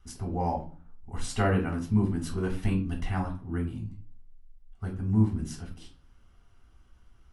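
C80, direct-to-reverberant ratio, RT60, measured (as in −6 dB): 16.0 dB, −0.5 dB, 0.40 s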